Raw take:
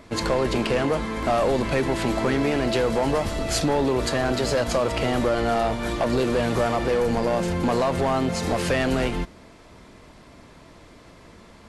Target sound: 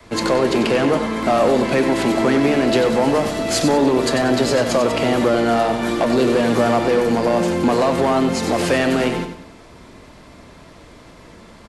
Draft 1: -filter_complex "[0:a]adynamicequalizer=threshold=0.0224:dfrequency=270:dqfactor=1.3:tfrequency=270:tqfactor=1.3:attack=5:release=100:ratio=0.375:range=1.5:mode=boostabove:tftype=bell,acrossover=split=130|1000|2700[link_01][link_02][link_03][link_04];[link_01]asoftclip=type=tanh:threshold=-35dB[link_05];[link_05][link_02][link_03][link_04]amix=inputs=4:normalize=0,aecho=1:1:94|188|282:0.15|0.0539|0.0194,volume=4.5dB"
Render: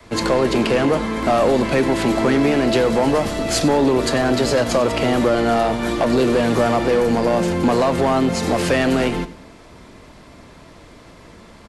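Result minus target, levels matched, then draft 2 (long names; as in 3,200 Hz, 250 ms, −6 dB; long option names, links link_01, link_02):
echo-to-direct −7.5 dB; soft clipping: distortion −5 dB
-filter_complex "[0:a]adynamicequalizer=threshold=0.0224:dfrequency=270:dqfactor=1.3:tfrequency=270:tqfactor=1.3:attack=5:release=100:ratio=0.375:range=1.5:mode=boostabove:tftype=bell,acrossover=split=130|1000|2700[link_01][link_02][link_03][link_04];[link_01]asoftclip=type=tanh:threshold=-44.5dB[link_05];[link_05][link_02][link_03][link_04]amix=inputs=4:normalize=0,aecho=1:1:94|188|282|376:0.376|0.135|0.0487|0.0175,volume=4.5dB"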